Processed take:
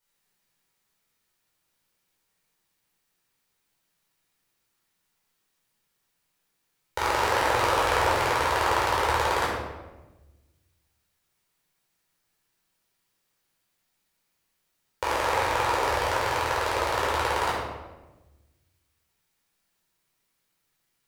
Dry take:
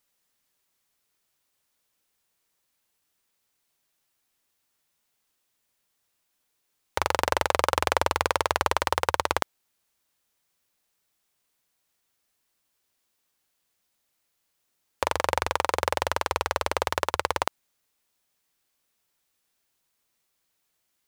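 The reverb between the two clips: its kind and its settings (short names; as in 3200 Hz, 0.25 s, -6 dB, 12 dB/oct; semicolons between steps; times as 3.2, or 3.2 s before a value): shoebox room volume 620 m³, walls mixed, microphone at 4.6 m; gain -8.5 dB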